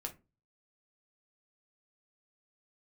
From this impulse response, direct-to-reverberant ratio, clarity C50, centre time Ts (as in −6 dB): 2.0 dB, 15.0 dB, 9 ms